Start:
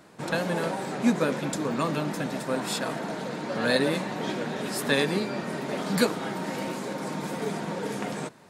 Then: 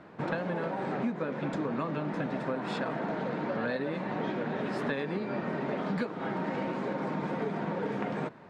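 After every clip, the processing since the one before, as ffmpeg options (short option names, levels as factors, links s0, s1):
-af "lowpass=2200,acompressor=threshold=0.0282:ratio=10,volume=1.33"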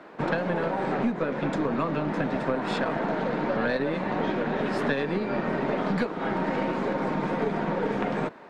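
-filter_complex "[0:a]equalizer=f=80:w=1.2:g=-4.5,aeval=exprs='0.133*(cos(1*acos(clip(val(0)/0.133,-1,1)))-cos(1*PI/2))+0.0335*(cos(2*acos(clip(val(0)/0.133,-1,1)))-cos(2*PI/2))':c=same,acrossover=split=230[s0][s1];[s0]aeval=exprs='sgn(val(0))*max(abs(val(0))-0.00126,0)':c=same[s2];[s2][s1]amix=inputs=2:normalize=0,volume=2"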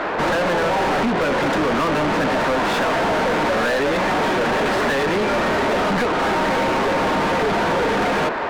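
-filter_complex "[0:a]asplit=2[s0][s1];[s1]highpass=f=720:p=1,volume=70.8,asoftclip=type=tanh:threshold=0.237[s2];[s0][s2]amix=inputs=2:normalize=0,lowpass=f=2300:p=1,volume=0.501"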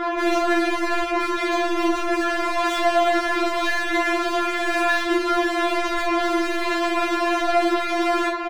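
-filter_complex "[0:a]asplit=2[s0][s1];[s1]aecho=0:1:39|54:0.398|0.398[s2];[s0][s2]amix=inputs=2:normalize=0,afftfilt=real='re*4*eq(mod(b,16),0)':imag='im*4*eq(mod(b,16),0)':win_size=2048:overlap=0.75"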